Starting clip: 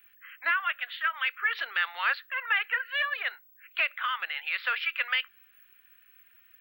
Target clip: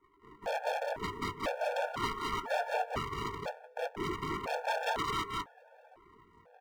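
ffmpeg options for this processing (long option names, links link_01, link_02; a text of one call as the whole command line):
ffmpeg -i in.wav -filter_complex "[0:a]afftfilt=real='real(if(between(b,1,1012),(2*floor((b-1)/92)+1)*92-b,b),0)':imag='imag(if(between(b,1,1012),(2*floor((b-1)/92)+1)*92-b,b),0)*if(between(b,1,1012),-1,1)':win_size=2048:overlap=0.75,dynaudnorm=framelen=210:gausssize=3:maxgain=5.5dB,bandreject=frequency=60:width_type=h:width=6,bandreject=frequency=120:width_type=h:width=6,bandreject=frequency=180:width_type=h:width=6,bandreject=frequency=240:width_type=h:width=6,bandreject=frequency=300:width_type=h:width=6,bandreject=frequency=360:width_type=h:width=6,asplit=2[link_01][link_02];[link_02]aeval=exprs='(mod(3.76*val(0)+1,2)-1)/3.76':channel_layout=same,volume=-3.5dB[link_03];[link_01][link_03]amix=inputs=2:normalize=0,acrusher=samples=36:mix=1:aa=0.000001:lfo=1:lforange=36:lforate=0.34,aeval=exprs='val(0)*sin(2*PI*340*n/s)':channel_layout=same,alimiter=limit=-12dB:level=0:latency=1:release=312,acrossover=split=480 2300:gain=0.224 1 0.0891[link_04][link_05][link_06];[link_04][link_05][link_06]amix=inputs=3:normalize=0,asplit=2[link_07][link_08];[link_08]adelay=20,volume=-11dB[link_09];[link_07][link_09]amix=inputs=2:normalize=0,aeval=exprs='0.0668*(abs(mod(val(0)/0.0668+3,4)-2)-1)':channel_layout=same,aecho=1:1:177.8|209.9:0.355|0.794,afftfilt=real='re*gt(sin(2*PI*1*pts/sr)*(1-2*mod(floor(b*sr/1024/460),2)),0)':imag='im*gt(sin(2*PI*1*pts/sr)*(1-2*mod(floor(b*sr/1024/460),2)),0)':win_size=1024:overlap=0.75,volume=-1.5dB" out.wav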